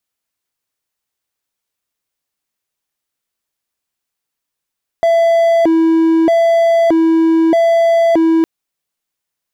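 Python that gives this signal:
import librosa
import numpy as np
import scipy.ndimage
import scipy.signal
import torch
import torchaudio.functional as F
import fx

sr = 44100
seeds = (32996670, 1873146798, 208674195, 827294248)

y = fx.siren(sr, length_s=3.41, kind='hi-lo', low_hz=326.0, high_hz=669.0, per_s=0.8, wave='triangle', level_db=-6.0)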